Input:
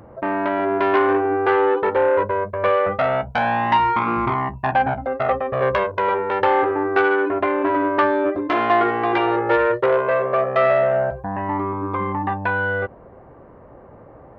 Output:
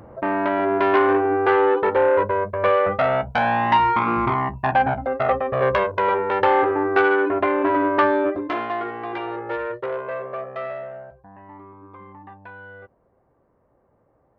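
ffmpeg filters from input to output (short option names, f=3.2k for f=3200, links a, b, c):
-af "afade=t=out:st=8.16:d=0.56:silence=0.316228,afade=t=out:st=10.2:d=0.86:silence=0.334965"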